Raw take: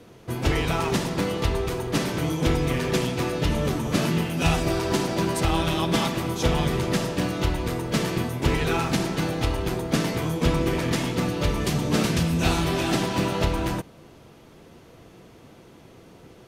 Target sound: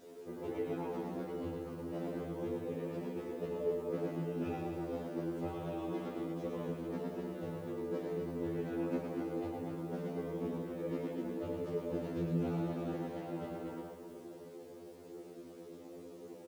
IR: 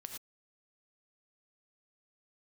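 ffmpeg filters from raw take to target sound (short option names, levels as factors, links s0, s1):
-af "flanger=delay=7.2:depth=8.8:regen=-77:speed=0.75:shape=triangular,bandpass=f=420:t=q:w=2:csg=0,acompressor=threshold=0.00398:ratio=2,flanger=delay=16:depth=7.9:speed=0.29,aecho=1:1:110|253|438.9|680.6|994.7:0.631|0.398|0.251|0.158|0.1,acrusher=bits=11:mix=0:aa=0.000001,afftfilt=real='re*2*eq(mod(b,4),0)':imag='im*2*eq(mod(b,4),0)':win_size=2048:overlap=0.75,volume=3.35"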